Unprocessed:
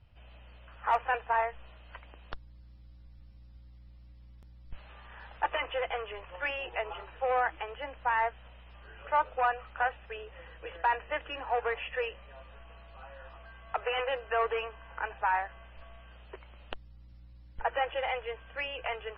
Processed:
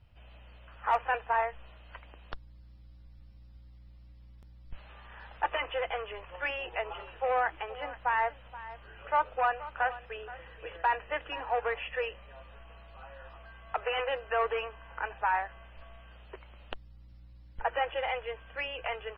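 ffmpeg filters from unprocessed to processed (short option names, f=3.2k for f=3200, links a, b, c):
-filter_complex "[0:a]asplit=3[a][b][c];[a]afade=t=out:st=6.98:d=0.02[d];[b]aecho=1:1:476:0.158,afade=t=in:st=6.98:d=0.02,afade=t=out:st=11.56:d=0.02[e];[c]afade=t=in:st=11.56:d=0.02[f];[d][e][f]amix=inputs=3:normalize=0"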